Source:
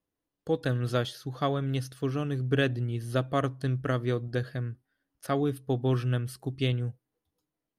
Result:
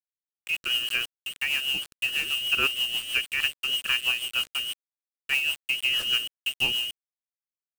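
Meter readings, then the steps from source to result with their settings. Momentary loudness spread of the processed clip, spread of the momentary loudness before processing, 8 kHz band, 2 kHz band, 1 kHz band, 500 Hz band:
8 LU, 8 LU, +12.5 dB, +13.0 dB, -5.5 dB, -17.0 dB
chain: inverted band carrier 3000 Hz; bit-crush 6-bit; rotary speaker horn 6.3 Hz; gain +3.5 dB

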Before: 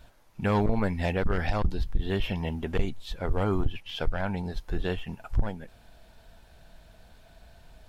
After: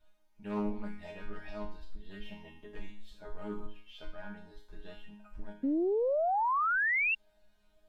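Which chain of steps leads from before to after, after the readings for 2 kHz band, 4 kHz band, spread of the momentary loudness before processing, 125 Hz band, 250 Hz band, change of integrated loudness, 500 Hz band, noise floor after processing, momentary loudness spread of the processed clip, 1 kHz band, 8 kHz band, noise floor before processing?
+4.5 dB, -12.5 dB, 9 LU, -21.0 dB, -6.0 dB, -0.5 dB, -3.0 dB, -67 dBFS, 23 LU, +2.0 dB, n/a, -56 dBFS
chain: resonator bank G#3 fifth, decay 0.53 s; painted sound rise, 5.63–7.15, 260–2800 Hz -32 dBFS; Doppler distortion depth 0.19 ms; gain +3 dB

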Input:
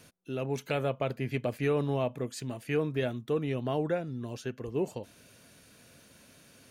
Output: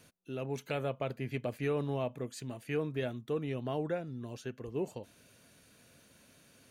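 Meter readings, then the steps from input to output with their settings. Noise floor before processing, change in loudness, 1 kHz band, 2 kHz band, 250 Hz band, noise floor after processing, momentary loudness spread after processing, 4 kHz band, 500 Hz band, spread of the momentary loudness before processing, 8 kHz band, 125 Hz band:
-59 dBFS, -4.5 dB, -4.5 dB, -4.5 dB, -4.5 dB, -63 dBFS, 9 LU, -4.5 dB, -4.5 dB, 9 LU, -4.5 dB, -4.5 dB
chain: notch 5200 Hz, Q 17; gain -4.5 dB

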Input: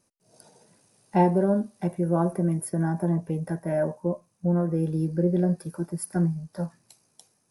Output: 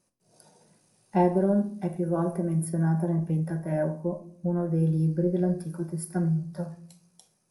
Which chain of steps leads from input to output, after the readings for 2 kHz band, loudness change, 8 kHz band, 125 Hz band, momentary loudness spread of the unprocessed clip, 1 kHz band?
-2.5 dB, -1.0 dB, -3.0 dB, 0.0 dB, 9 LU, -3.0 dB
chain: shoebox room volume 620 m³, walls furnished, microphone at 1 m; gain -3.5 dB

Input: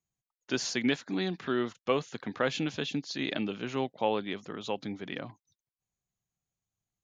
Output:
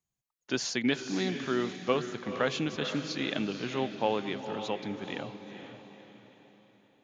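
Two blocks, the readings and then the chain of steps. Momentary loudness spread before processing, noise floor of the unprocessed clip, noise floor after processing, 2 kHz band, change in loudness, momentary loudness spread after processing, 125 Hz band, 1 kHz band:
8 LU, under -85 dBFS, under -85 dBFS, +0.5 dB, +0.5 dB, 14 LU, +0.5 dB, +0.5 dB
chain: diffused feedback echo 0.48 s, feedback 44%, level -8.5 dB

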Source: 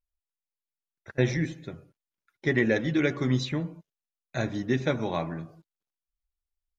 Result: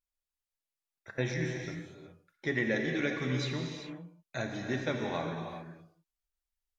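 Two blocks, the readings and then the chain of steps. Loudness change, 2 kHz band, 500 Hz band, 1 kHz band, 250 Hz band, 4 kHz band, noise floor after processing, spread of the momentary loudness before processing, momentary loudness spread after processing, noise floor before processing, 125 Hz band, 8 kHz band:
-6.0 dB, -3.0 dB, -6.0 dB, -3.5 dB, -7.0 dB, -2.5 dB, under -85 dBFS, 14 LU, 15 LU, under -85 dBFS, -6.5 dB, n/a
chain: low shelf 360 Hz -6.5 dB; in parallel at -2 dB: compressor, threshold -38 dBFS, peak gain reduction 16 dB; on the sum: non-linear reverb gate 0.43 s flat, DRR 2 dB; gain -6 dB; MP3 112 kbps 48000 Hz

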